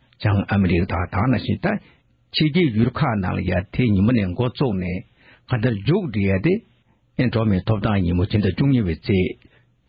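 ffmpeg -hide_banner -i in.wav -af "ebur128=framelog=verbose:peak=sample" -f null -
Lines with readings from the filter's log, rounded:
Integrated loudness:
  I:         -20.8 LUFS
  Threshold: -31.3 LUFS
Loudness range:
  LRA:         1.7 LU
  Threshold: -41.4 LUFS
  LRA low:   -22.5 LUFS
  LRA high:  -20.8 LUFS
Sample peak:
  Peak:       -6.5 dBFS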